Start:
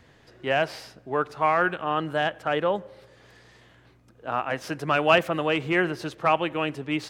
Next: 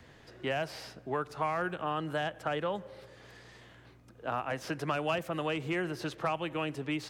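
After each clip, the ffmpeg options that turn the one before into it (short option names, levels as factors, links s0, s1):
-filter_complex "[0:a]acrossover=split=160|1000|5100[s0][s1][s2][s3];[s0]acompressor=threshold=0.00631:ratio=4[s4];[s1]acompressor=threshold=0.02:ratio=4[s5];[s2]acompressor=threshold=0.0126:ratio=4[s6];[s3]acompressor=threshold=0.00282:ratio=4[s7];[s4][s5][s6][s7]amix=inputs=4:normalize=0"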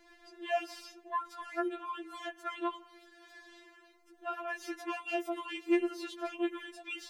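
-af "afftfilt=real='re*4*eq(mod(b,16),0)':imag='im*4*eq(mod(b,16),0)':win_size=2048:overlap=0.75"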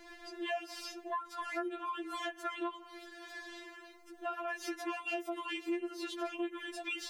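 -af "acompressor=threshold=0.00631:ratio=4,volume=2.37"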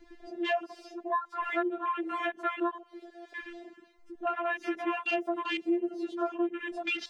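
-af "afwtdn=0.00631,equalizer=f=13000:t=o:w=0.78:g=-11,volume=2.37"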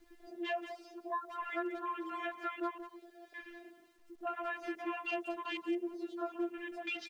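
-filter_complex "[0:a]asplit=2[s0][s1];[s1]adelay=180,highpass=300,lowpass=3400,asoftclip=type=hard:threshold=0.0398,volume=0.355[s2];[s0][s2]amix=inputs=2:normalize=0,acrusher=bits=10:mix=0:aa=0.000001,volume=0.422"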